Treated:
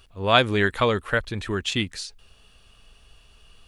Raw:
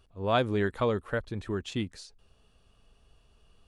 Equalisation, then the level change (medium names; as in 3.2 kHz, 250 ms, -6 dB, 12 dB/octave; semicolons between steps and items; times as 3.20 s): bass shelf 66 Hz +6 dB; peaking EQ 2.4 kHz +9.5 dB 2.3 oct; treble shelf 5.9 kHz +10.5 dB; +3.5 dB